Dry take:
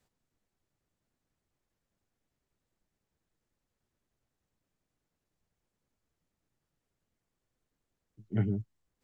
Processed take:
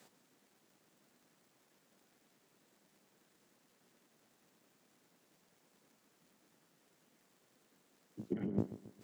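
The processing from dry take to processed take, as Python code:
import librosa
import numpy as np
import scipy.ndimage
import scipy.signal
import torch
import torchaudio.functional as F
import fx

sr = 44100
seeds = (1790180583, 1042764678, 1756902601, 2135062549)

p1 = fx.octave_divider(x, sr, octaves=2, level_db=1.0)
p2 = scipy.signal.sosfilt(scipy.signal.butter(4, 180.0, 'highpass', fs=sr, output='sos'), p1)
p3 = fx.over_compress(p2, sr, threshold_db=-40.0, ratio=-0.5)
p4 = fx.dmg_crackle(p3, sr, seeds[0], per_s=95.0, level_db=-66.0)
p5 = p4 + fx.echo_feedback(p4, sr, ms=136, feedback_pct=45, wet_db=-15.0, dry=0)
y = F.gain(torch.from_numpy(p5), 6.5).numpy()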